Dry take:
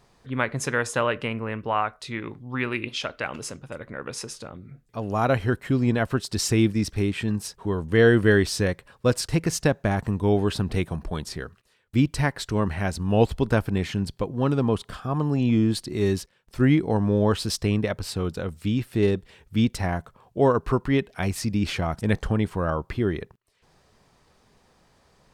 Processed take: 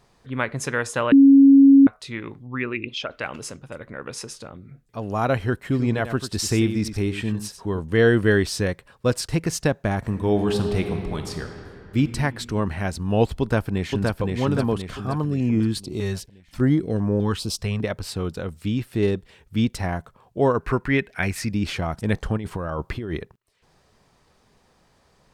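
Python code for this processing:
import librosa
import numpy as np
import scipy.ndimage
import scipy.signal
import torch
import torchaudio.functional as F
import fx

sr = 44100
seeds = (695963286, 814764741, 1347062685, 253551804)

y = fx.envelope_sharpen(x, sr, power=1.5, at=(2.46, 3.1), fade=0.02)
y = fx.echo_single(y, sr, ms=92, db=-10.5, at=(5.55, 7.79))
y = fx.reverb_throw(y, sr, start_s=9.98, length_s=2.0, rt60_s=2.7, drr_db=5.0)
y = fx.echo_throw(y, sr, start_s=13.4, length_s=0.81, ms=520, feedback_pct=50, wet_db=-2.5)
y = fx.filter_held_notch(y, sr, hz=5.0, low_hz=300.0, high_hz=3600.0, at=(15.23, 17.82), fade=0.02)
y = fx.band_shelf(y, sr, hz=1900.0, db=8.0, octaves=1.0, at=(20.58, 21.51))
y = fx.over_compress(y, sr, threshold_db=-28.0, ratio=-1.0, at=(22.37, 23.18))
y = fx.edit(y, sr, fx.bleep(start_s=1.12, length_s=0.75, hz=275.0, db=-7.5), tone=tone)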